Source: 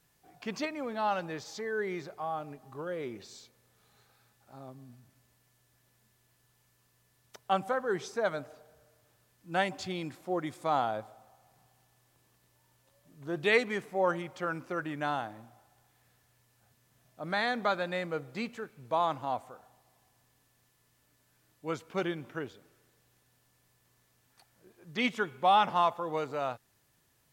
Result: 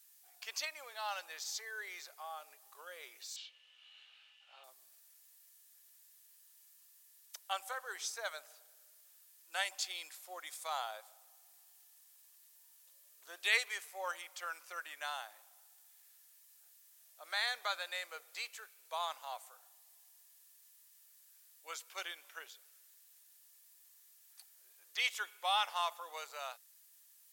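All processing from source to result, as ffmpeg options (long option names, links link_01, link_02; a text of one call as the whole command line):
ffmpeg -i in.wav -filter_complex "[0:a]asettb=1/sr,asplit=3[link_01][link_02][link_03];[link_01]atrim=end=3.364[link_04];[link_02]atrim=start=3.36:end=4.64,asetpts=PTS-STARTPTS,afade=type=in:duration=0.004:curve=qsin,afade=type=out:start_time=1.276:duration=0.004:curve=qsin,lowpass=frequency=2900:width_type=q:width=14,asplit=2[link_05][link_06];[link_06]adelay=24,volume=-5.5dB[link_07];[link_05][link_07]amix=inputs=2:normalize=0,atrim=end_sample=56448[link_08];[link_03]atrim=start=4.636[link_09];[link_04][link_08]acrossfade=duration=0.004:curve1=hsin:curve2=qsin[link_10];[link_10][link_09]acrossfade=duration=0.004:curve1=qsin:curve2=hsin,highpass=frequency=500:width=0.5412,highpass=frequency=500:width=1.3066,aderivative,volume=7.5dB" out.wav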